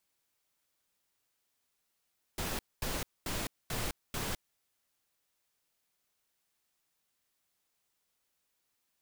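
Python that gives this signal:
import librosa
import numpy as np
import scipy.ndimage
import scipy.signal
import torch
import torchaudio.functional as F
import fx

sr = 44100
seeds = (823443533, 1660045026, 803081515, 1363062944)

y = fx.noise_burst(sr, seeds[0], colour='pink', on_s=0.21, off_s=0.23, bursts=5, level_db=-35.5)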